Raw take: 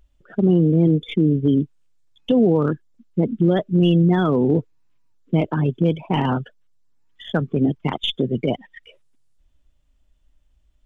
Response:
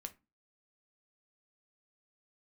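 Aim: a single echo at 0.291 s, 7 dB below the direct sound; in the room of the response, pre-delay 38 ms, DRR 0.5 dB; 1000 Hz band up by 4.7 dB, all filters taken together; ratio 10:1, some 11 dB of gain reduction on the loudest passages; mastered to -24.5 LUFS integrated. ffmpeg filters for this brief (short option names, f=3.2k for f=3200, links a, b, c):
-filter_complex "[0:a]equalizer=f=1k:t=o:g=6,acompressor=threshold=-23dB:ratio=10,aecho=1:1:291:0.447,asplit=2[a][b];[1:a]atrim=start_sample=2205,adelay=38[c];[b][c]afir=irnorm=-1:irlink=0,volume=3.5dB[d];[a][d]amix=inputs=2:normalize=0,volume=1dB"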